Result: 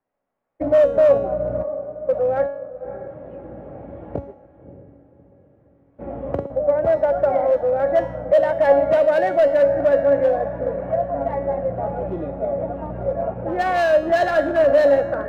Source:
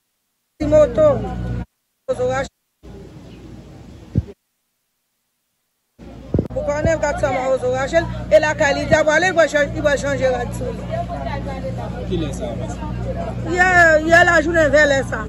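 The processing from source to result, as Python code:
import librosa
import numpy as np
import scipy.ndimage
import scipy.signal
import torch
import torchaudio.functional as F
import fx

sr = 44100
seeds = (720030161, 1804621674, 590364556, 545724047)

y = fx.recorder_agc(x, sr, target_db=-11.5, rise_db_per_s=5.6, max_gain_db=30)
y = scipy.signal.sosfilt(scipy.signal.butter(4, 2000.0, 'lowpass', fs=sr, output='sos'), y)
y = fx.low_shelf(y, sr, hz=390.0, db=2.5)
y = fx.echo_diffused(y, sr, ms=599, feedback_pct=42, wet_db=-14)
y = np.clip(y, -10.0 ** (-12.0 / 20.0), 10.0 ** (-12.0 / 20.0))
y = fx.peak_eq(y, sr, hz=610.0, db=15.0, octaves=1.3)
y = fx.comb_fb(y, sr, f0_hz=280.0, decay_s=0.69, harmonics='all', damping=0.0, mix_pct=80)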